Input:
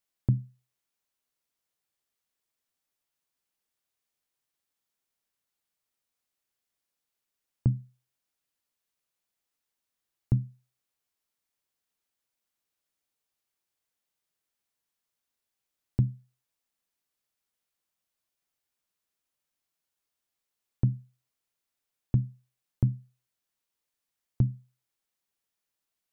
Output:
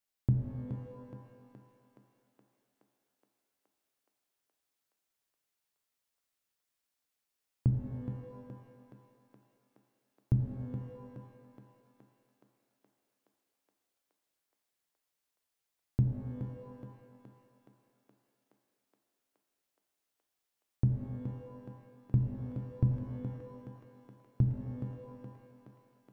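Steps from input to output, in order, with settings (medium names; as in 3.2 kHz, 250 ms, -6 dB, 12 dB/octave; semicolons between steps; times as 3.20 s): thinning echo 421 ms, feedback 77%, high-pass 270 Hz, level -6 dB; pitch-shifted reverb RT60 1.5 s, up +12 st, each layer -8 dB, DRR 5 dB; trim -3.5 dB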